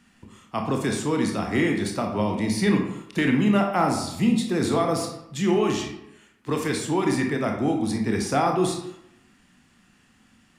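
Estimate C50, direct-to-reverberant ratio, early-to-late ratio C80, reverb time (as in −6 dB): 5.5 dB, 2.0 dB, 8.5 dB, 0.80 s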